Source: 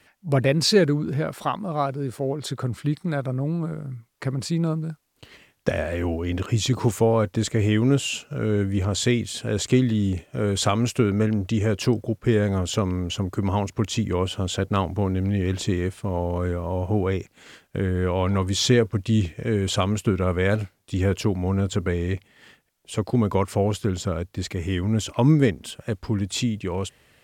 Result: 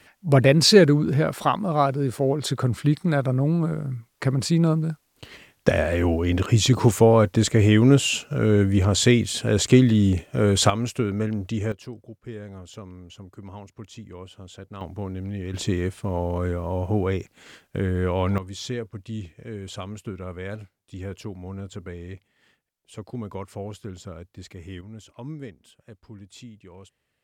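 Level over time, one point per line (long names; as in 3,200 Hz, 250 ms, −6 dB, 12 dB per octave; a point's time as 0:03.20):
+4 dB
from 0:10.70 −4 dB
from 0:11.72 −16.5 dB
from 0:14.81 −8 dB
from 0:15.54 −0.5 dB
from 0:18.38 −12 dB
from 0:24.81 −18.5 dB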